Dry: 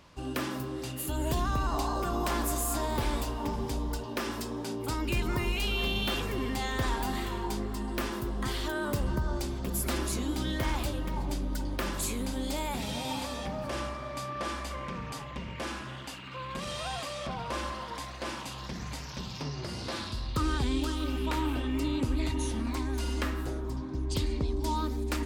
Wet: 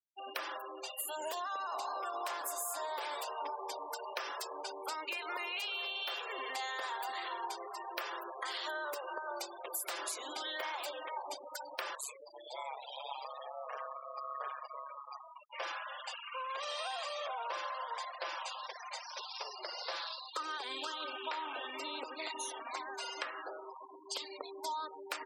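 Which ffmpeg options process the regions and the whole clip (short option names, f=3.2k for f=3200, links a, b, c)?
-filter_complex "[0:a]asettb=1/sr,asplit=3[a][b][c];[a]atrim=end=11.954[d];[b]atrim=start=11.95:end=15.53,asetpts=PTS-STARTPTS,afade=t=in:d=0.004:c=qsin,afade=t=out:st=3.576:d=0.004:c=qsin,adynamicequalizer=threshold=0.00282:dfrequency=1200:dqfactor=6:tfrequency=1200:tqfactor=6:attack=5:release=100:ratio=0.375:range=1.5:mode=boostabove:tftype=bell,flanger=delay=0.1:depth=7.2:regen=-58:speed=1.2:shape=sinusoidal,aeval=exprs='val(0)*sin(2*PI*68*n/s)':c=same[e];[c]atrim=start=15.526[f];[d][e]acrossfade=d=0.004:c1=hsin:c2=qsin[g];[g][f]acrossfade=d=0.004:c1=qsin:c2=hsin,highpass=f=550:w=0.5412,highpass=f=550:w=1.3066,afftfilt=real='re*gte(hypot(re,im),0.01)':imag='im*gte(hypot(re,im),0.01)':win_size=1024:overlap=0.75,acompressor=threshold=-38dB:ratio=6,volume=2dB"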